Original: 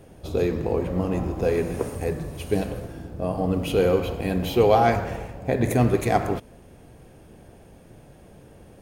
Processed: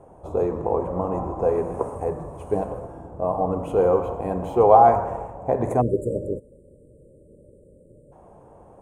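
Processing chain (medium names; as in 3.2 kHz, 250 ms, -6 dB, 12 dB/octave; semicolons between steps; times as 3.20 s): FFT filter 260 Hz 0 dB, 1 kHz +14 dB, 1.7 kHz -6 dB, 4.7 kHz -20 dB, 7.9 kHz -2 dB, 14 kHz -20 dB; spectral selection erased 5.81–8.12 s, 620–7000 Hz; trim -4.5 dB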